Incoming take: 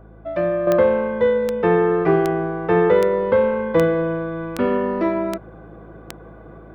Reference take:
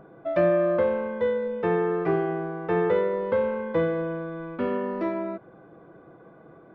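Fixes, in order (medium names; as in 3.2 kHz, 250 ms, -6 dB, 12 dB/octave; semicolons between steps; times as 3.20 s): de-click; de-hum 53.7 Hz, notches 4; gain correction -7.5 dB, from 0.67 s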